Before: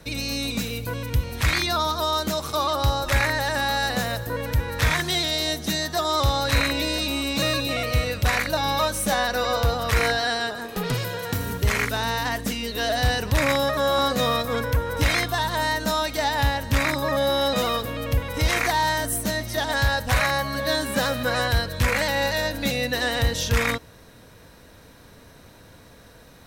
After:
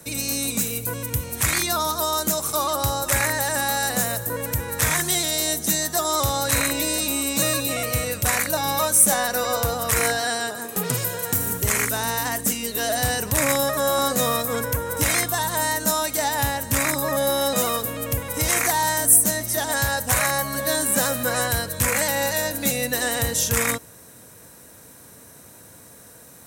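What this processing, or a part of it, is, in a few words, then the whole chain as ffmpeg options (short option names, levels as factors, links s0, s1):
budget condenser microphone: -af "highpass=97,highshelf=f=5900:t=q:w=1.5:g=12"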